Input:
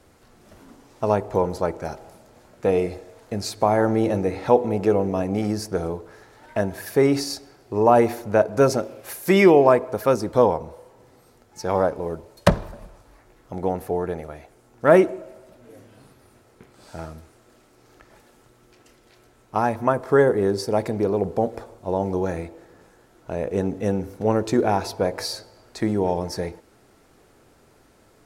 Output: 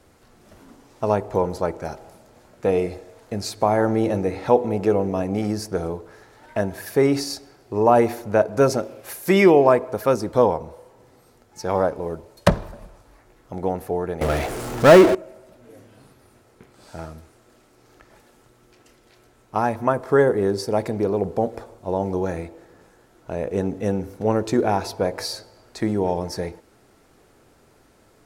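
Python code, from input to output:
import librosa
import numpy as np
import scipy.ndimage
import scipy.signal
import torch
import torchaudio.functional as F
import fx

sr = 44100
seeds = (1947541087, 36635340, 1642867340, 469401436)

y = fx.power_curve(x, sr, exponent=0.5, at=(14.21, 15.15))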